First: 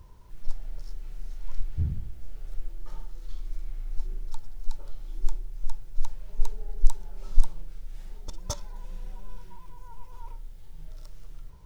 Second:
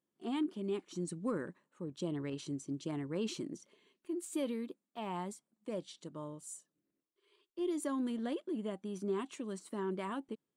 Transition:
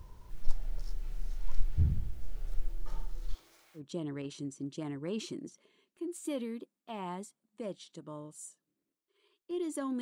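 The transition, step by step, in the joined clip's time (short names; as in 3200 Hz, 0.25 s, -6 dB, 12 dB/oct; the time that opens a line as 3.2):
first
3.33–3.82 HPF 290 Hz -> 1200 Hz
3.78 switch to second from 1.86 s, crossfade 0.08 s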